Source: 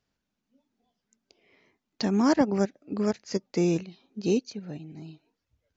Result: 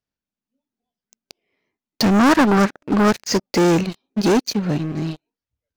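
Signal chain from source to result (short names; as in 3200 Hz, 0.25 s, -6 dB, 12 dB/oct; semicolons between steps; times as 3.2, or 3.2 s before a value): sample leveller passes 5; 2.13–3.11 dynamic EQ 1300 Hz, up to +8 dB, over -36 dBFS, Q 1.3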